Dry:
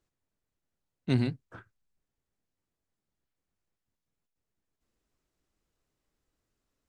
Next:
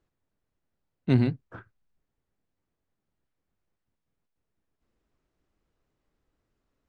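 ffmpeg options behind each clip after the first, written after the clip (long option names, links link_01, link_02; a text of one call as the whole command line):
ffmpeg -i in.wav -af "aemphasis=mode=reproduction:type=75fm,volume=4dB" out.wav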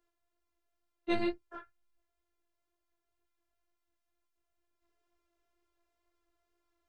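ffmpeg -i in.wav -af "afftfilt=real='hypot(re,im)*cos(PI*b)':imag='0':win_size=512:overlap=0.75,flanger=delay=16.5:depth=2.3:speed=2.1,lowshelf=frequency=340:width_type=q:width=1.5:gain=-7.5,volume=6.5dB" out.wav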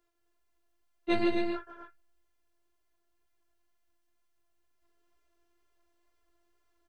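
ffmpeg -i in.wav -af "aecho=1:1:151.6|218.7|262.4:0.447|0.251|0.447,volume=3dB" out.wav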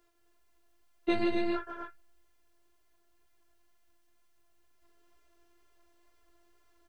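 ffmpeg -i in.wav -af "acompressor=threshold=-32dB:ratio=6,volume=7dB" out.wav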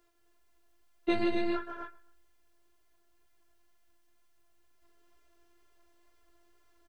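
ffmpeg -i in.wav -af "aecho=1:1:130|260:0.0794|0.0278" out.wav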